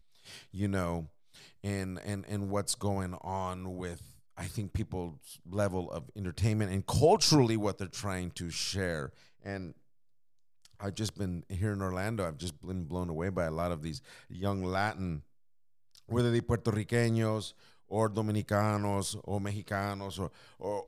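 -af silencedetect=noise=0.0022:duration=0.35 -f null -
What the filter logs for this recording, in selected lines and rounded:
silence_start: 9.77
silence_end: 10.65 | silence_duration: 0.88
silence_start: 15.23
silence_end: 15.95 | silence_duration: 0.72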